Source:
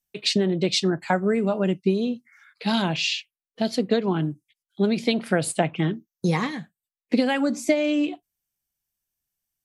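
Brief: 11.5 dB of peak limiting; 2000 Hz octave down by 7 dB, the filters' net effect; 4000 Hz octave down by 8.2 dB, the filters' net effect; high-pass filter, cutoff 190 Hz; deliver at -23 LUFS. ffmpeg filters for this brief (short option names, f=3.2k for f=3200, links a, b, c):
-af "highpass=190,equalizer=f=2k:t=o:g=-7,equalizer=f=4k:t=o:g=-8,volume=6.5dB,alimiter=limit=-13dB:level=0:latency=1"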